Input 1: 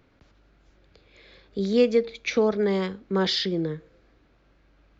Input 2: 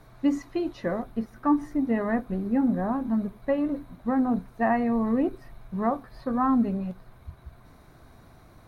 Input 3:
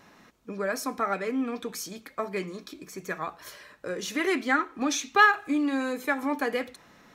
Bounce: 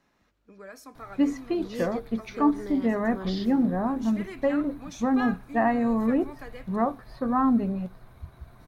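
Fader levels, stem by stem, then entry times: -14.5, +0.5, -15.0 dB; 0.00, 0.95, 0.00 s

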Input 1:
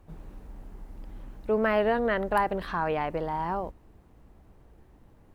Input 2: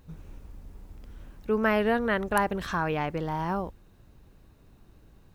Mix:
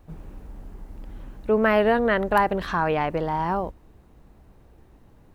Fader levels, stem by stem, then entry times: +2.5, -6.0 dB; 0.00, 0.00 s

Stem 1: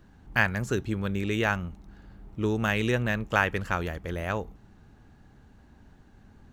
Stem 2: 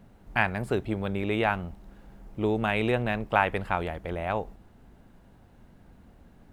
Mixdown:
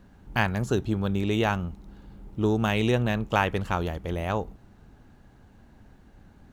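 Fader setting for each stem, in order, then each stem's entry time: -0.5, -4.0 dB; 0.00, 0.00 s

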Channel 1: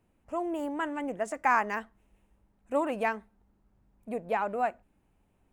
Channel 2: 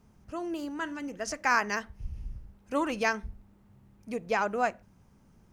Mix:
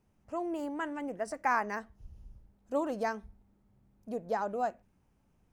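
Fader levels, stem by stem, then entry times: -5.0, -12.5 dB; 0.00, 0.00 s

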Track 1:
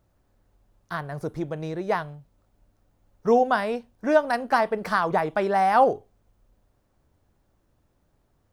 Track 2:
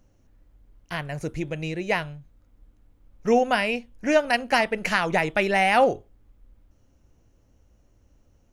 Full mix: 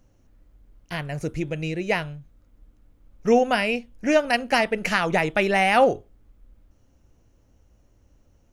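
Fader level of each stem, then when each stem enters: -10.5, +1.0 dB; 0.00, 0.00 s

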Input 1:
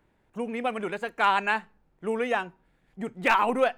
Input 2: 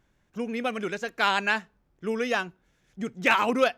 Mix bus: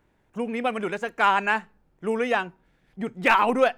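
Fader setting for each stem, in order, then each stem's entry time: +1.0, -9.5 dB; 0.00, 0.00 s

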